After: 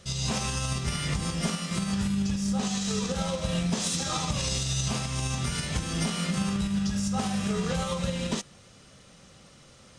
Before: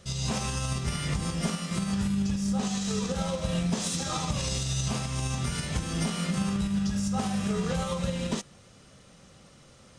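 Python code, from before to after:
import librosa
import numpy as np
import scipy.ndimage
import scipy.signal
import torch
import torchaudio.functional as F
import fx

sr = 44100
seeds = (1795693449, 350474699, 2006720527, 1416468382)

y = fx.peak_eq(x, sr, hz=4000.0, db=3.0, octaves=2.7)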